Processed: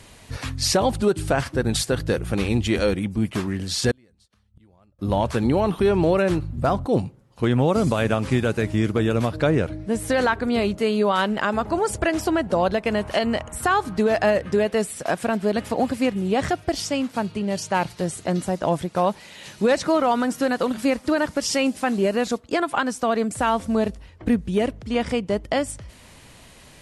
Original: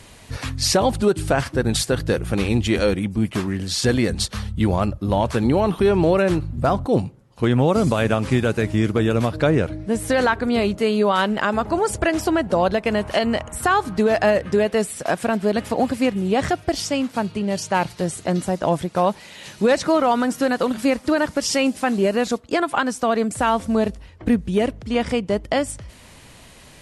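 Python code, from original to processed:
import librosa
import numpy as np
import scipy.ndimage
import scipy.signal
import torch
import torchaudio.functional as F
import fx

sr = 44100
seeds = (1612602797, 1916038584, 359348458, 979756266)

y = fx.gate_flip(x, sr, shuts_db=-21.0, range_db=-35, at=(3.91, 4.99))
y = F.gain(torch.from_numpy(y), -2.0).numpy()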